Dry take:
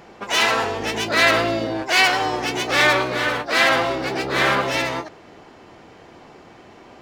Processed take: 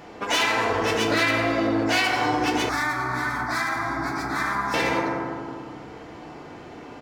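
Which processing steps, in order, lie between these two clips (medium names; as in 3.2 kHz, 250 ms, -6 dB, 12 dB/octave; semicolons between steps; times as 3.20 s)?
feedback delay 94 ms, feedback 46%, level -16.5 dB; FDN reverb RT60 1.8 s, low-frequency decay 1.45×, high-frequency decay 0.25×, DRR 0 dB; compression, threshold -19 dBFS, peak gain reduction 10 dB; 2.69–4.74 s: static phaser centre 1.2 kHz, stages 4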